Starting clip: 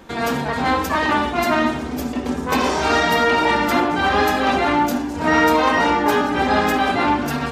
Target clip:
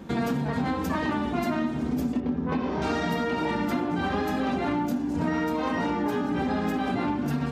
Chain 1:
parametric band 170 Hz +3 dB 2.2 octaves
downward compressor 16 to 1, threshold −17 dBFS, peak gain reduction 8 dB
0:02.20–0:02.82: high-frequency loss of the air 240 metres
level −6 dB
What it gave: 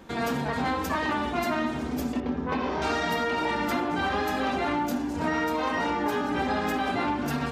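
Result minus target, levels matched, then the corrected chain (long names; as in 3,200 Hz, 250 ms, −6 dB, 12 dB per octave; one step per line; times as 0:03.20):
125 Hz band −4.5 dB
parametric band 170 Hz +14 dB 2.2 octaves
downward compressor 16 to 1, threshold −17 dBFS, peak gain reduction 12.5 dB
0:02.20–0:02.82: high-frequency loss of the air 240 metres
level −6 dB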